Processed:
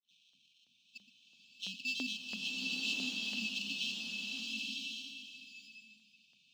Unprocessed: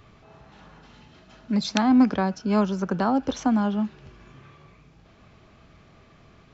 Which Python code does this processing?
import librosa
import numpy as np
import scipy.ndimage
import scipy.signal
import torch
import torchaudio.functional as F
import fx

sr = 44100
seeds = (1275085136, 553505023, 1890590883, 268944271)

p1 = fx.block_reorder(x, sr, ms=109.0, group=7)
p2 = fx.peak_eq(p1, sr, hz=5500.0, db=-8.5, octaves=2.6)
p3 = fx.dispersion(p2, sr, late='lows', ms=106.0, hz=2500.0)
p4 = p3 + fx.echo_single(p3, sr, ms=121, db=-16.5, dry=0)
p5 = fx.sample_hold(p4, sr, seeds[0], rate_hz=2400.0, jitter_pct=0)
p6 = fx.brickwall_bandstop(p5, sr, low_hz=280.0, high_hz=2300.0)
p7 = fx.air_absorb(p6, sr, metres=190.0)
p8 = fx.hum_notches(p7, sr, base_hz=50, count=4)
p9 = fx.filter_lfo_highpass(p8, sr, shape='saw_up', hz=3.0, low_hz=720.0, high_hz=3200.0, q=0.96)
y = fx.rev_bloom(p9, sr, seeds[1], attack_ms=1050, drr_db=-3.0)